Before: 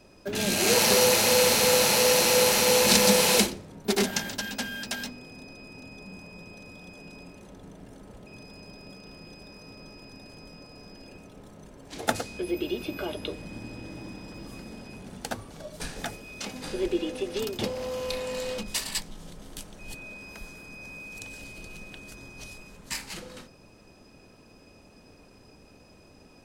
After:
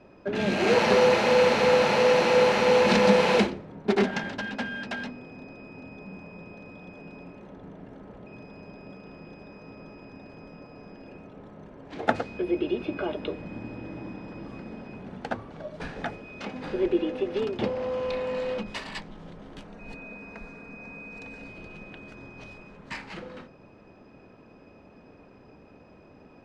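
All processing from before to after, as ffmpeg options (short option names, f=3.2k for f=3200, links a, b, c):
-filter_complex "[0:a]asettb=1/sr,asplit=3[a][b][c];[a]atrim=end=19.674[d];[b]atrim=start=19.67:end=21.49,asetpts=PTS-STARTPTS,afade=t=in:d=0.004:c=qsin,afade=t=out:st=1.816:d=0.004:c=qsin,bandreject=f=3.2k:w=5.7,aecho=1:1:4.3:0.4,atrim=end_sample=80262[e];[c]atrim=start=21.486[f];[d][e]acrossfade=d=0.004:c1=hsin:c2=qsin[g];[g][f]acrossfade=d=0.004:c1=qsin:c2=hsin,lowpass=2.1k,lowshelf=f=61:g=-10,bandreject=f=50:t=h:w=6,bandreject=f=100:t=h:w=6,volume=3.5dB"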